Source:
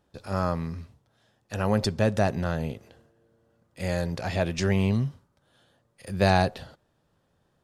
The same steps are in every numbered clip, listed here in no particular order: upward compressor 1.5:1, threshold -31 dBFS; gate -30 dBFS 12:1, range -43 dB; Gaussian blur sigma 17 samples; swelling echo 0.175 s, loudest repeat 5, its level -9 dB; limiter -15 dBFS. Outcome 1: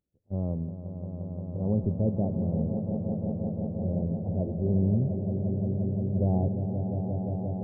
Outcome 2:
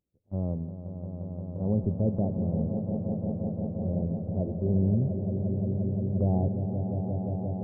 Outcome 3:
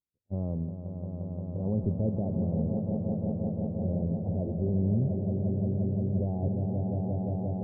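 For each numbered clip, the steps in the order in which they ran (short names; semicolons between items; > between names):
gate > Gaussian blur > upward compressor > swelling echo > limiter; Gaussian blur > gate > upward compressor > swelling echo > limiter; upward compressor > gate > swelling echo > limiter > Gaussian blur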